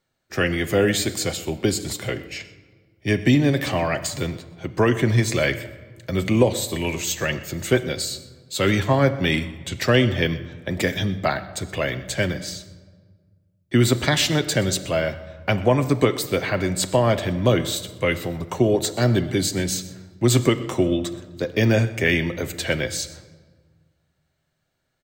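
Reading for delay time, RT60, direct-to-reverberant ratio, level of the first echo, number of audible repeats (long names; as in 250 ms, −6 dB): 125 ms, 1.5 s, 8.5 dB, −20.0 dB, 1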